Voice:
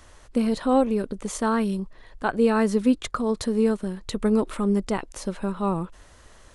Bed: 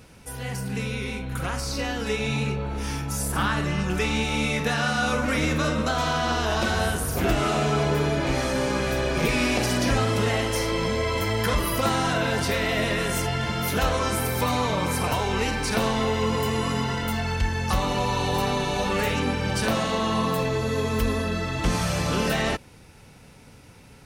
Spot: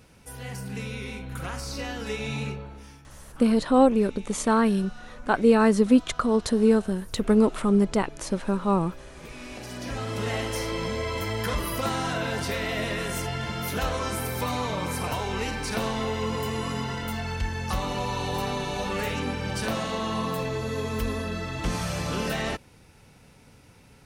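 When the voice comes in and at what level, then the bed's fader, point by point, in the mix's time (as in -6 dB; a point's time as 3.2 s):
3.05 s, +2.0 dB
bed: 2.48 s -5 dB
3.05 s -22.5 dB
9.15 s -22.5 dB
10.34 s -4.5 dB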